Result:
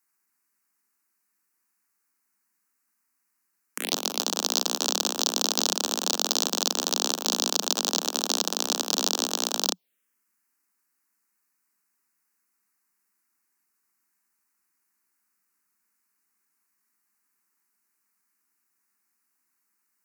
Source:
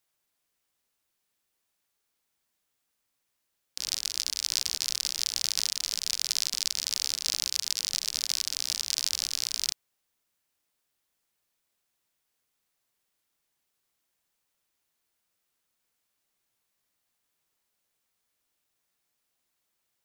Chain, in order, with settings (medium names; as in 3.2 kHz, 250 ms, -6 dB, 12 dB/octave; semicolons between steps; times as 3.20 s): Chebyshev shaper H 4 -16 dB, 7 -11 dB, 8 -24 dB, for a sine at -5.5 dBFS; steep high-pass 180 Hz 96 dB/octave; touch-sensitive phaser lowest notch 590 Hz, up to 2.1 kHz, full sweep at -28.5 dBFS; trim +5.5 dB